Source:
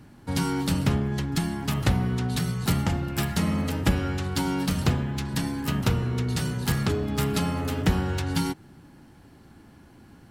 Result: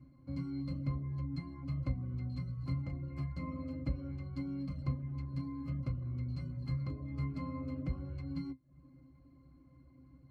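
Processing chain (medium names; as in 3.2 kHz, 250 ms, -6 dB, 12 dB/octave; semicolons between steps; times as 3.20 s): reverb removal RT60 0.51 s; in parallel at +1 dB: compression, threshold -38 dBFS, peak gain reduction 20 dB; on the sum: pitch-class resonator C, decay 0.13 s; trim -7 dB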